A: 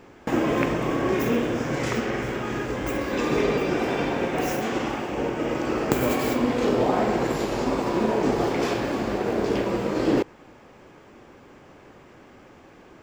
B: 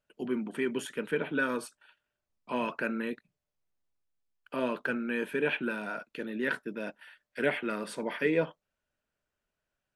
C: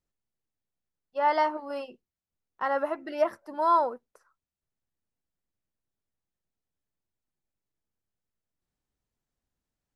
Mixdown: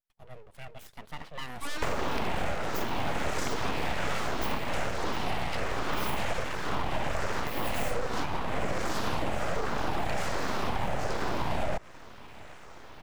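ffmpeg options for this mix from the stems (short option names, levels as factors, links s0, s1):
-filter_complex "[0:a]acrossover=split=380[s0][s1];[s1]acompressor=threshold=0.0501:ratio=2.5[s2];[s0][s2]amix=inputs=2:normalize=0,volume=11.2,asoftclip=hard,volume=0.0891,asplit=2[s3][s4];[s4]afreqshift=-1.3[s5];[s3][s5]amix=inputs=2:normalize=1,adelay=1550,volume=1.12[s6];[1:a]highshelf=f=8700:g=11.5,volume=0.237,asplit=2[s7][s8];[2:a]asoftclip=type=hard:threshold=0.0473,adelay=450,volume=0.447[s9];[s8]apad=whole_len=642909[s10];[s6][s10]sidechaincompress=threshold=0.00708:ratio=8:attack=24:release=390[s11];[s11][s7][s9]amix=inputs=3:normalize=0,dynaudnorm=f=220:g=9:m=2,aeval=exprs='abs(val(0))':c=same,acompressor=threshold=0.0631:ratio=6"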